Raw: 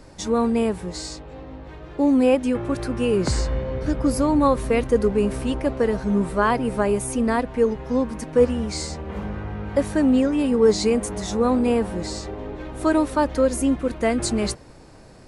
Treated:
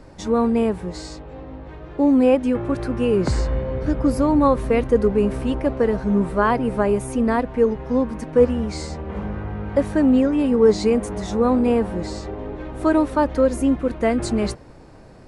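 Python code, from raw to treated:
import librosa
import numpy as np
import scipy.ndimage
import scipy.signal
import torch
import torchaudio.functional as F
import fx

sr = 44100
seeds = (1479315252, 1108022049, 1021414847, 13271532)

y = fx.high_shelf(x, sr, hz=3400.0, db=-10.0)
y = y * librosa.db_to_amplitude(2.0)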